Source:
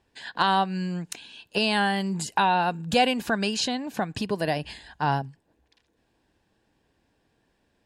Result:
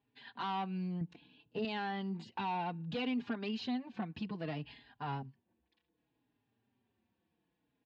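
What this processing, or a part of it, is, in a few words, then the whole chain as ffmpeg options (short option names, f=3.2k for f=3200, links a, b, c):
barber-pole flanger into a guitar amplifier: -filter_complex "[0:a]asplit=2[a][b];[b]adelay=4.4,afreqshift=-0.63[c];[a][c]amix=inputs=2:normalize=1,asoftclip=type=tanh:threshold=-22.5dB,highpass=89,equalizer=f=120:t=q:w=4:g=6,equalizer=f=240:t=q:w=4:g=7,equalizer=f=580:t=q:w=4:g=-6,equalizer=f=1.6k:t=q:w=4:g=-5,lowpass=f=3.8k:w=0.5412,lowpass=f=3.8k:w=1.3066,asettb=1/sr,asplit=3[d][e][f];[d]atrim=end=1.014[g];[e]atrim=start=1.01:end=1.65,asetpts=PTS-STARTPTS,afade=t=in:d=0.004:c=qsin,afade=t=out:st=0.636:d=0.004:c=qsin,tiltshelf=f=690:g=8[h];[f]atrim=start=1.646[i];[g][h]acrossfade=d=0.004:c1=hsin:c2=qsin[j];[j][i]acrossfade=d=0.004:c1=qsin:c2=hsin,volume=-8.5dB"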